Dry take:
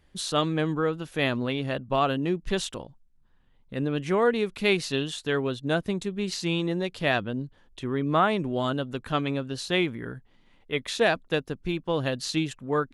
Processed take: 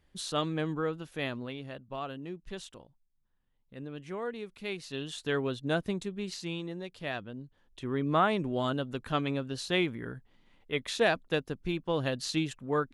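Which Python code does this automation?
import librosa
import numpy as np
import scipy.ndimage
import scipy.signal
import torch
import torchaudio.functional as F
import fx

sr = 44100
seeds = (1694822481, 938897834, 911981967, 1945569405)

y = fx.gain(x, sr, db=fx.line((0.93, -6.0), (1.81, -14.0), (4.8, -14.0), (5.22, -4.0), (5.88, -4.0), (6.73, -11.5), (7.45, -11.5), (7.94, -3.5)))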